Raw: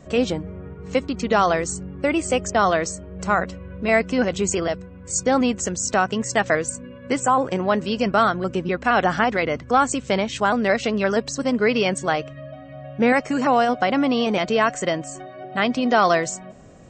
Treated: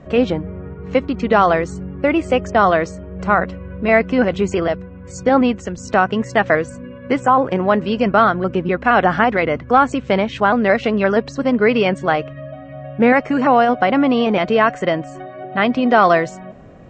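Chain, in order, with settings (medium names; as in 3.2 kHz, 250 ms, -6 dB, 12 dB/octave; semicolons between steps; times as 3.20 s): low-pass 2.7 kHz 12 dB/octave; 5.29–5.78 s: three bands expanded up and down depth 70%; trim +5 dB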